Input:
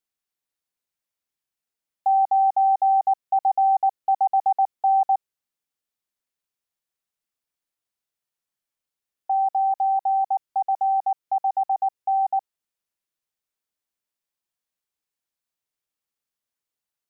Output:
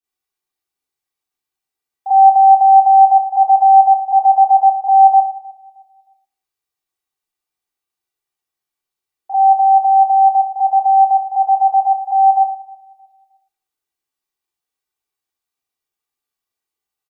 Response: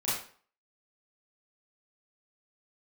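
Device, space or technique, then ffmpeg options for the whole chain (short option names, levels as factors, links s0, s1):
microphone above a desk: -filter_complex "[0:a]asettb=1/sr,asplit=3[s0][s1][s2];[s0]atrim=end=11.764[s3];[s1]atrim=start=11.76:end=12.36,asetpts=PTS-STARTPTS,afade=t=in:d=0.004:c=qsin,afade=t=out:st=0.596:d=0.004:c=qsin,bass=f=250:g=-15,treble=f=4000:g=7[s4];[s2]atrim=start=12.356[s5];[s3][s4]acrossfade=d=0.004:c1=hsin:c2=qsin[s6];[s6][s5]acrossfade=d=0.004:c1=qsin:c2=hsin,aecho=1:1:2.6:0.5,asplit=2[s7][s8];[s8]adelay=311,lowpass=f=950:p=1,volume=0.0891,asplit=2[s9][s10];[s10]adelay=311,lowpass=f=950:p=1,volume=0.4,asplit=2[s11][s12];[s12]adelay=311,lowpass=f=950:p=1,volume=0.4[s13];[s7][s9][s11][s13]amix=inputs=4:normalize=0[s14];[1:a]atrim=start_sample=2205[s15];[s14][s15]afir=irnorm=-1:irlink=0,volume=0.596"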